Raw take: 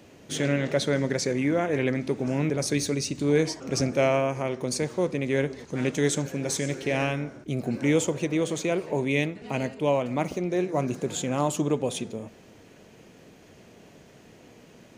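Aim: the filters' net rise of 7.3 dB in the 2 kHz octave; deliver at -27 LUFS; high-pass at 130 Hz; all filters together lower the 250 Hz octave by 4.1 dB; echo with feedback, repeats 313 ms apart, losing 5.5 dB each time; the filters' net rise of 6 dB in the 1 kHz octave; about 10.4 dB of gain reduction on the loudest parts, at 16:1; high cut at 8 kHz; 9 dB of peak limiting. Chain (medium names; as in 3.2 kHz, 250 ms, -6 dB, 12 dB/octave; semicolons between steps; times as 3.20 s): high-pass 130 Hz; low-pass 8 kHz; peaking EQ 250 Hz -5.5 dB; peaking EQ 1 kHz +7 dB; peaking EQ 2 kHz +7 dB; compression 16:1, threshold -26 dBFS; peak limiter -23 dBFS; feedback delay 313 ms, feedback 53%, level -5.5 dB; trim +6 dB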